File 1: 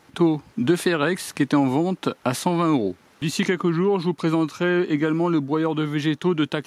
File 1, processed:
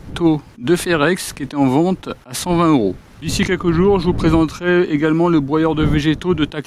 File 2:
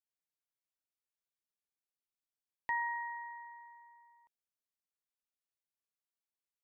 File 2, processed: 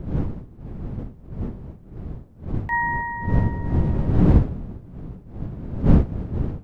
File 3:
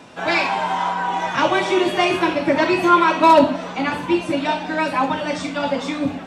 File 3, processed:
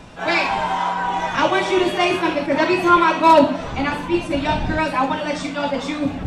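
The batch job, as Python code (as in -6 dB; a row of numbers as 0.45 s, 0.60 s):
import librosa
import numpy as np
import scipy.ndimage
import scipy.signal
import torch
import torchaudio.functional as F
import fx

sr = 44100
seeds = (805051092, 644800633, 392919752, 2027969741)

y = fx.dmg_wind(x, sr, seeds[0], corner_hz=160.0, level_db=-35.0)
y = fx.attack_slew(y, sr, db_per_s=210.0)
y = librosa.util.normalize(y) * 10.0 ** (-2 / 20.0)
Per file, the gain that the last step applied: +7.0 dB, +12.5 dB, +0.5 dB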